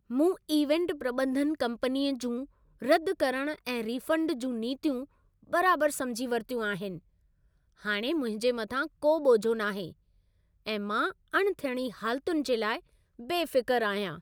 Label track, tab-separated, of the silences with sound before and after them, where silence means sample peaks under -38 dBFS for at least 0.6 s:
6.970000	7.850000	silence
9.900000	10.670000	silence